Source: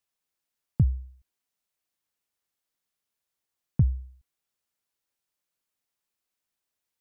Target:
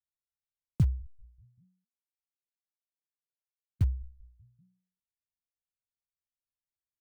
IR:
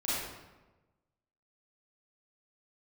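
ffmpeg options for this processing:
-filter_complex "[0:a]asettb=1/sr,asplit=3[a][b][c];[a]atrim=end=1.064[d];[b]atrim=start=1.06:end=3.81,asetpts=PTS-STARTPTS,afade=t=in:d=0.004:c=qsin,afade=t=out:st=2.746:d=0.004:c=qsin,aderivative[e];[c]atrim=start=3.806[f];[d][e]acrossfade=d=0.004:c1=hsin:c2=qsin[g];[g][f]acrossfade=d=0.004:c1=qsin:c2=hsin,acrossover=split=140[h][i];[h]asplit=5[j][k][l][m][n];[k]adelay=193,afreqshift=-62,volume=-21dB[o];[l]adelay=386,afreqshift=-124,volume=-27.2dB[p];[m]adelay=579,afreqshift=-186,volume=-33.4dB[q];[n]adelay=772,afreqshift=-248,volume=-39.6dB[r];[j][o][p][q][r]amix=inputs=5:normalize=0[s];[i]acrusher=bits=6:mix=0:aa=0.000001[t];[s][t]amix=inputs=2:normalize=0,volume=-3dB"

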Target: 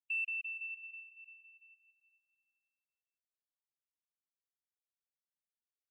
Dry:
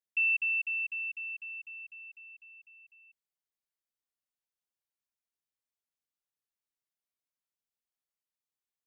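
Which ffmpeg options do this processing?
-filter_complex "[0:a]afftfilt=real='re*gte(hypot(re,im),0.02)':imag='im*gte(hypot(re,im),0.02)':win_size=1024:overlap=0.75,equalizer=f=2.5k:w=0.44:g=-6,atempo=1.5,aeval=exprs='0.0355*(cos(1*acos(clip(val(0)/0.0355,-1,1)))-cos(1*PI/2))+0.000282*(cos(3*acos(clip(val(0)/0.0355,-1,1)))-cos(3*PI/2))':c=same,asplit=2[a][b];[b]aecho=0:1:423|846|1269:0.15|0.0524|0.0183[c];[a][c]amix=inputs=2:normalize=0,volume=-2dB"

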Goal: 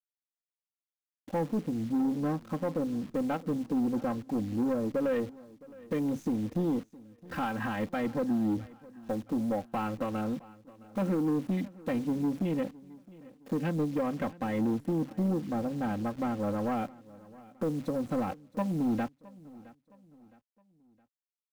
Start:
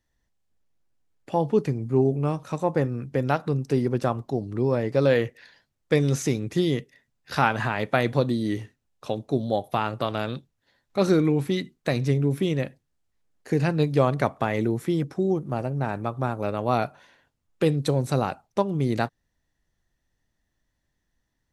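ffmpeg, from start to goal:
-af "afwtdn=0.0178,equalizer=f=140:t=o:w=2.4:g=8.5,aecho=1:1:3.8:0.93,alimiter=limit=-11dB:level=0:latency=1:release=281,asoftclip=type=tanh:threshold=-16.5dB,acrusher=bits=8:dc=4:mix=0:aa=0.000001,aecho=1:1:665|1330|1995:0.0891|0.0365|0.015,adynamicequalizer=threshold=0.00316:dfrequency=5900:dqfactor=0.7:tfrequency=5900:tqfactor=0.7:attack=5:release=100:ratio=0.375:range=2:mode=cutabove:tftype=highshelf,volume=-7dB"

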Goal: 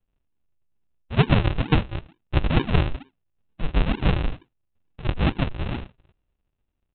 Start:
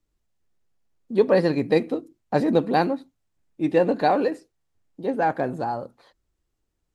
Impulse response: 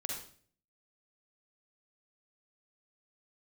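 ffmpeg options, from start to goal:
-af "aresample=8000,acrusher=samples=24:mix=1:aa=0.000001:lfo=1:lforange=24:lforate=2.2,aresample=44100,equalizer=f=2.7k:t=o:w=0.21:g=6.5"

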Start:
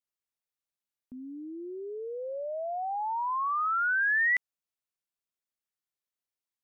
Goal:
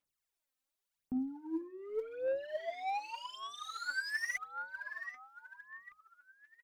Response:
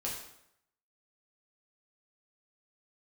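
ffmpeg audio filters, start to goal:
-filter_complex "[0:a]asplit=2[a][b];[b]adelay=775,lowpass=f=2.5k:p=1,volume=-20dB,asplit=2[c][d];[d]adelay=775,lowpass=f=2.5k:p=1,volume=0.38,asplit=2[e][f];[f]adelay=775,lowpass=f=2.5k:p=1,volume=0.38[g];[a][c][e][g]amix=inputs=4:normalize=0,alimiter=level_in=5.5dB:limit=-24dB:level=0:latency=1:release=51,volume=-5.5dB,asoftclip=type=tanh:threshold=-39.5dB,asettb=1/sr,asplit=3[h][i][j];[h]atrim=end=1.614[k];[i]atrim=start=1.61:end=3.86,asetpts=PTS-STARTPTS,afade=t=in:d=0.004:c=qsin,afade=t=out:st=2.246:d=0.004:c=qsin,equalizer=f=1.1k:w=2:g=-12.5[l];[j]atrim=start=3.856[m];[k][l]acrossfade=d=0.004:c1=hsin:c2=qsin[n];[n][m]acrossfade=d=0.004:c1=qsin:c2=hsin,aphaser=in_gain=1:out_gain=1:delay=3.9:decay=0.74:speed=0.87:type=sinusoidal,bandreject=f=60:t=h:w=6,bandreject=f=120:t=h:w=6,bandreject=f=180:t=h:w=6,bandreject=f=240:t=h:w=6,bandreject=f=300:t=h:w=6,bandreject=f=360:t=h:w=6"

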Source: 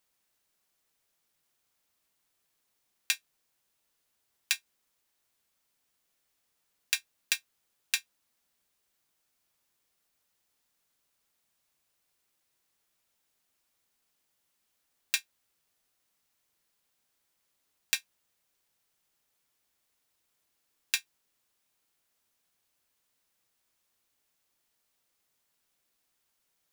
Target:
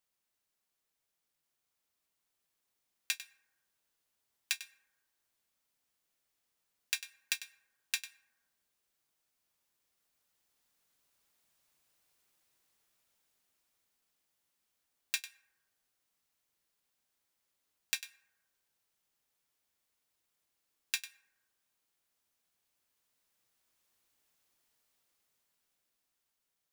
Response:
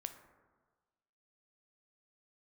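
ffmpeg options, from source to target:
-filter_complex "[0:a]dynaudnorm=f=520:g=9:m=10dB,asplit=2[a][b];[1:a]atrim=start_sample=2205,adelay=98[c];[b][c]afir=irnorm=-1:irlink=0,volume=-10.5dB[d];[a][d]amix=inputs=2:normalize=0,volume=-8dB"

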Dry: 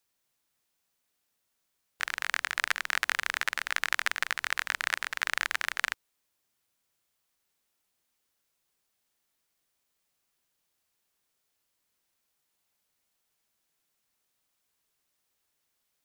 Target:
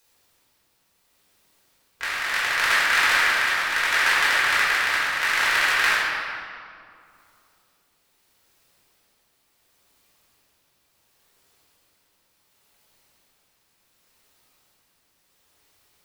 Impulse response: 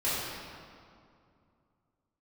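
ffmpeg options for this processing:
-filter_complex "[0:a]agate=range=-33dB:threshold=-49dB:ratio=3:detection=peak,acompressor=mode=upward:threshold=-44dB:ratio=2.5,tremolo=f=0.7:d=0.42[a];[1:a]atrim=start_sample=2205[b];[a][b]afir=irnorm=-1:irlink=0,volume=3dB"

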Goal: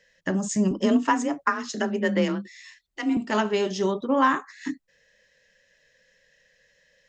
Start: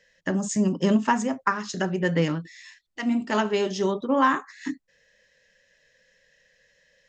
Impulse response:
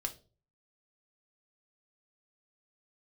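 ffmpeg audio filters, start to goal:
-filter_complex "[0:a]asettb=1/sr,asplit=3[a][b][c];[a]atrim=end=0.714[d];[b]atrim=start=0.71:end=3.17,asetpts=PTS-STARTPTS,afade=t=in:d=0.004:c=qsin,afade=t=out:st=2.456:d=0.004:c=qsin,afreqshift=31[e];[c]atrim=start=3.166[f];[d][e]acrossfade=d=0.004:c1=hsin:c2=qsin[g];[g][f]acrossfade=d=0.004:c1=qsin:c2=hsin"

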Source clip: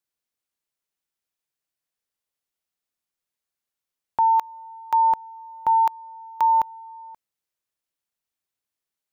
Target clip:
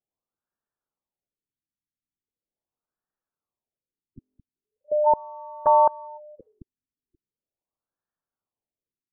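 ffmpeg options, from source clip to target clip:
-filter_complex "[0:a]asplit=3[a][b][c];[b]asetrate=29433,aresample=44100,atempo=1.49831,volume=-4dB[d];[c]asetrate=55563,aresample=44100,atempo=0.793701,volume=-13dB[e];[a][d][e]amix=inputs=3:normalize=0,afftfilt=real='re*lt(b*sr/1024,310*pow(1900/310,0.5+0.5*sin(2*PI*0.4*pts/sr)))':imag='im*lt(b*sr/1024,310*pow(1900/310,0.5+0.5*sin(2*PI*0.4*pts/sr)))':win_size=1024:overlap=0.75"

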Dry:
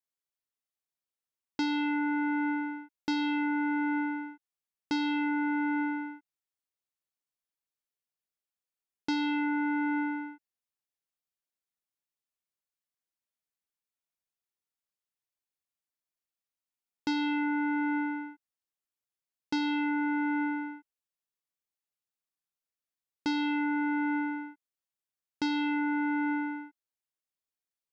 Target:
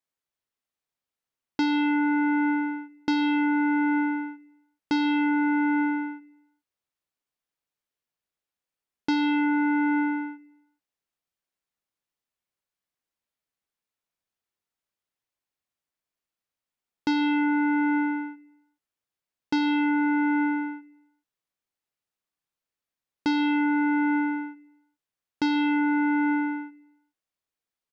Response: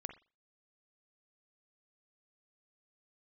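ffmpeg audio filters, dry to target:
-filter_complex "[0:a]highshelf=f=4.8k:g=-8,asplit=2[a][b];[b]adelay=140,lowpass=f=4.2k:p=1,volume=-23dB,asplit=2[c][d];[d]adelay=140,lowpass=f=4.2k:p=1,volume=0.48,asplit=2[e][f];[f]adelay=140,lowpass=f=4.2k:p=1,volume=0.48[g];[c][e][g]amix=inputs=3:normalize=0[h];[a][h]amix=inputs=2:normalize=0,volume=6dB"

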